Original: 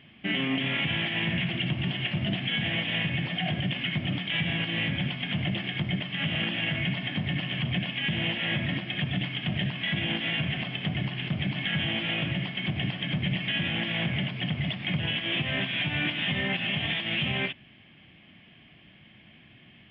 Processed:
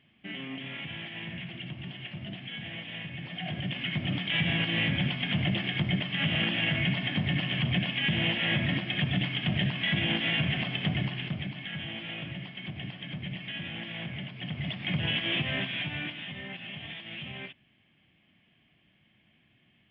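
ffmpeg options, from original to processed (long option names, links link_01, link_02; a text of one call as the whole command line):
ffmpeg -i in.wav -af "volume=10.5dB,afade=type=in:start_time=3.15:duration=1.33:silence=0.251189,afade=type=out:start_time=10.9:duration=0.66:silence=0.316228,afade=type=in:start_time=14.35:duration=0.82:silence=0.334965,afade=type=out:start_time=15.17:duration=1.11:silence=0.237137" out.wav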